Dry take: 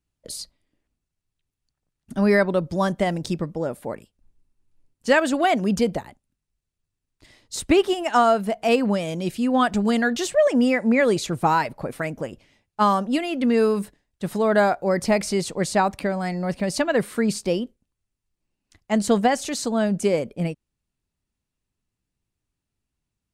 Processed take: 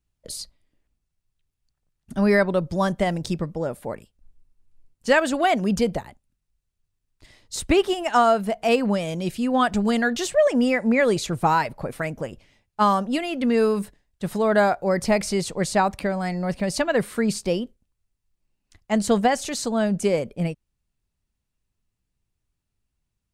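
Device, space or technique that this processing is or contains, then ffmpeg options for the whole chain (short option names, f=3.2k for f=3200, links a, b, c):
low shelf boost with a cut just above: -af "lowshelf=f=62:g=8,equalizer=f=290:t=o:w=0.72:g=-3"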